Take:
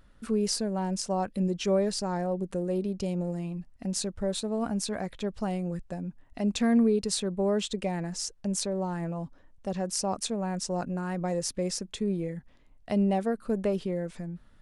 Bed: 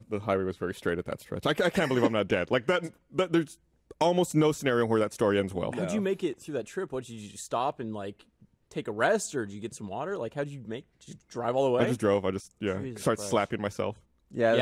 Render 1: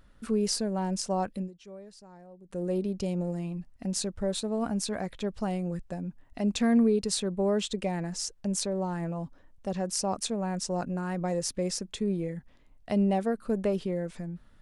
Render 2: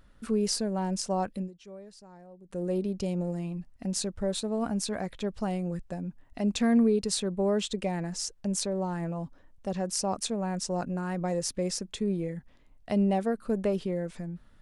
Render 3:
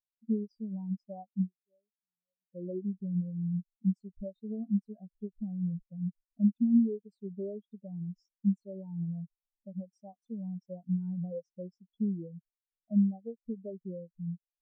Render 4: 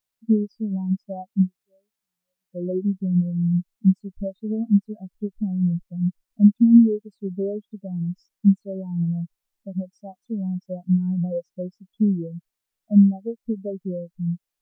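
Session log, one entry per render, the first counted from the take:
1.30–2.65 s: dip -20.5 dB, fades 0.21 s
no audible change
compression 16:1, threshold -31 dBFS, peak gain reduction 13 dB; spectral contrast expander 4:1
trim +11.5 dB

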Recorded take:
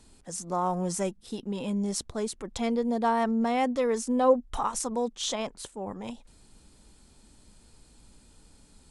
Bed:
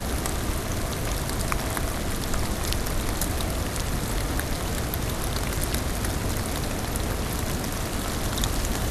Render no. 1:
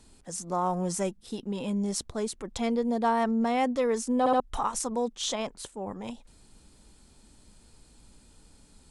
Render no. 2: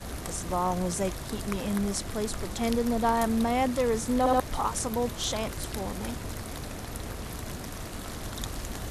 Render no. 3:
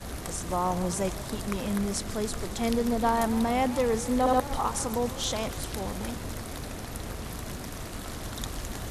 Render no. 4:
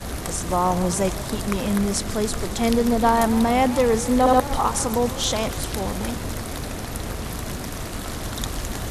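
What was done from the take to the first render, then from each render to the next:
4.19 s: stutter in place 0.07 s, 3 plays
add bed -9.5 dB
modulated delay 145 ms, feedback 70%, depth 194 cents, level -16 dB
trim +7 dB

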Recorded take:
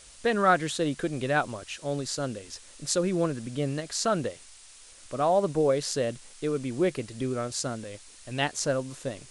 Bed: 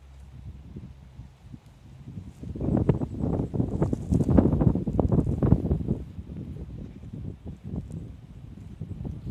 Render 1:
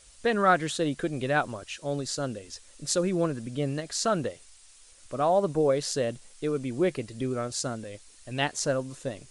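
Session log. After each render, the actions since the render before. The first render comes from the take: noise reduction 6 dB, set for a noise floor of -51 dBFS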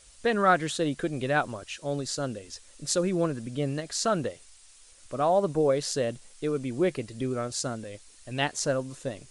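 no audible change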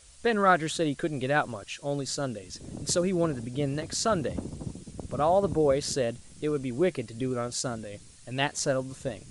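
add bed -16 dB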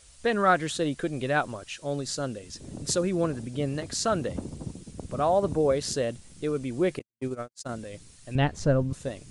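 6.99–7.69 s: gate -30 dBFS, range -59 dB; 8.35–8.93 s: RIAA curve playback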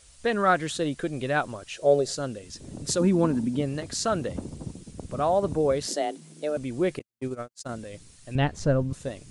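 1.73–2.15 s: high-order bell 510 Hz +13 dB 1.2 oct; 2.99–3.60 s: small resonant body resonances 240/910 Hz, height 16 dB -> 12 dB; 5.87–6.57 s: frequency shift +150 Hz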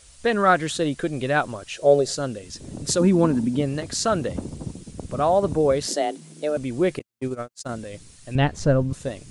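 trim +4 dB

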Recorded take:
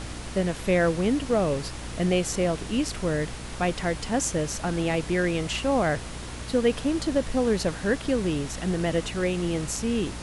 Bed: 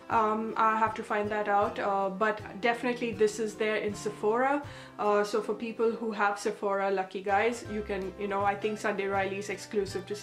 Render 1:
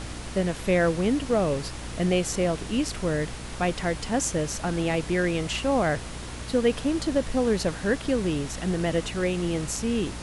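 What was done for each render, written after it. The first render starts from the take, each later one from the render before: no audible change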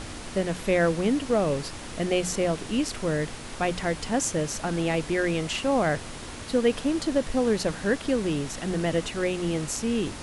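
hum notches 60/120/180 Hz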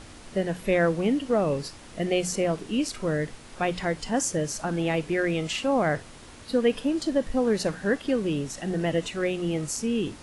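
noise print and reduce 8 dB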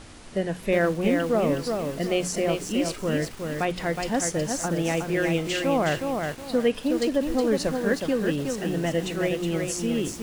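bit-crushed delay 367 ms, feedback 35%, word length 7-bit, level -4 dB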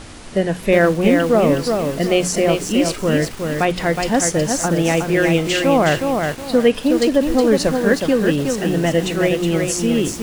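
trim +8.5 dB

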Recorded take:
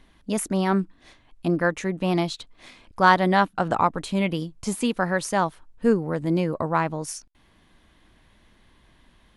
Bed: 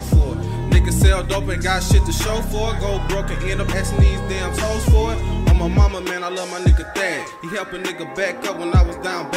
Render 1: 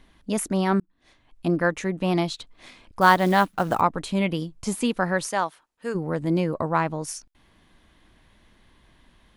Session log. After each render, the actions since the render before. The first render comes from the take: 0.80–1.46 s: fade in; 3.01–3.81 s: companded quantiser 6-bit; 5.25–5.94 s: high-pass 470 Hz -> 1.3 kHz 6 dB/octave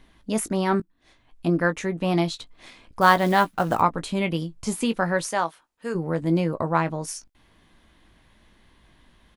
doubling 18 ms -10.5 dB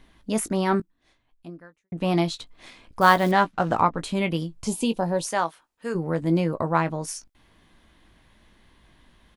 0.75–1.92 s: fade out quadratic; 3.31–3.99 s: distance through air 75 m; 4.67–5.27 s: high-order bell 1.6 kHz -14 dB 1.1 oct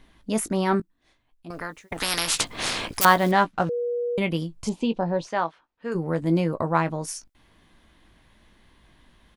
1.50–3.05 s: spectrum-flattening compressor 10:1; 3.69–4.18 s: bleep 481 Hz -23.5 dBFS; 4.69–5.92 s: distance through air 180 m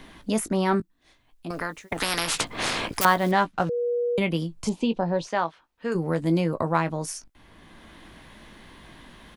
three bands compressed up and down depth 40%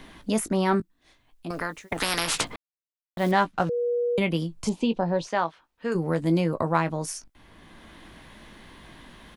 2.56–3.17 s: mute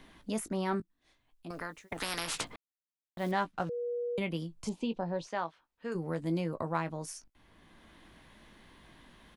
trim -9.5 dB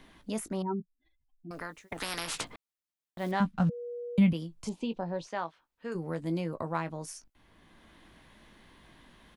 0.62–1.51 s: spectral contrast enhancement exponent 3; 3.40–4.33 s: resonant low shelf 280 Hz +9 dB, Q 3

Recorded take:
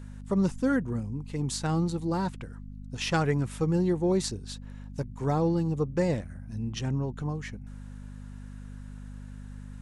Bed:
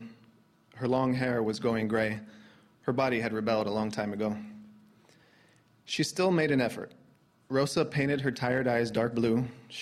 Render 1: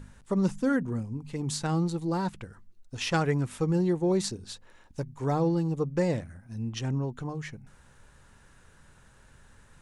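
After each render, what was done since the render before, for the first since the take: de-hum 50 Hz, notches 5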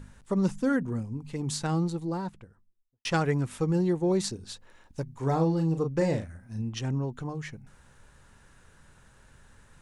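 1.67–3.05 s: studio fade out; 5.11–6.62 s: doubling 37 ms -7 dB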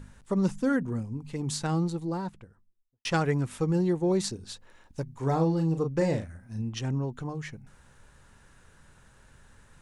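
no audible change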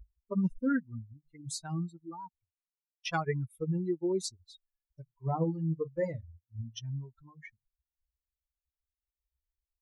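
expander on every frequency bin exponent 3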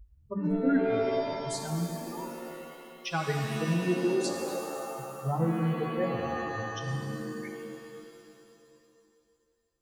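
pitch-shifted reverb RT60 2.5 s, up +7 st, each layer -2 dB, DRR 3 dB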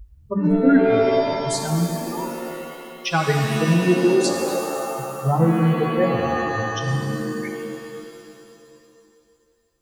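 trim +10.5 dB

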